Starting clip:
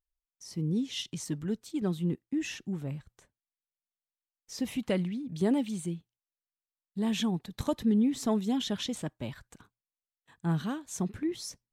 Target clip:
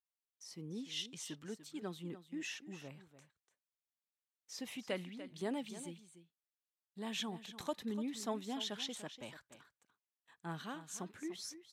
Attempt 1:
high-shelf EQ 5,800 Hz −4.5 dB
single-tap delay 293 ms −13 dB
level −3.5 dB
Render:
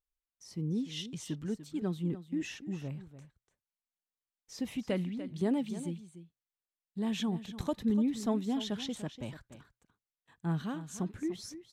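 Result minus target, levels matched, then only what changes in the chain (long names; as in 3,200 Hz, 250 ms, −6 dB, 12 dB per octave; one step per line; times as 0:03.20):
1,000 Hz band −5.5 dB
add first: high-pass filter 820 Hz 6 dB per octave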